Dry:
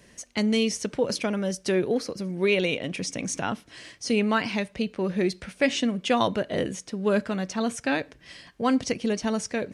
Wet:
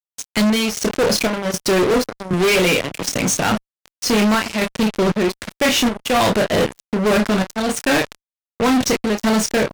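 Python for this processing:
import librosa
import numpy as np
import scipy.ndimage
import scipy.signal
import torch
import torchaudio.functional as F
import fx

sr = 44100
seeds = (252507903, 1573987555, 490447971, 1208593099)

y = fx.power_curve(x, sr, exponent=1.4)
y = fx.room_early_taps(y, sr, ms=(28, 52), db=(-7.5, -18.0))
y = fx.chopper(y, sr, hz=1.3, depth_pct=65, duty_pct=65)
y = fx.fuzz(y, sr, gain_db=39.0, gate_db=-45.0)
y = fx.band_squash(y, sr, depth_pct=40, at=(2.33, 3.09))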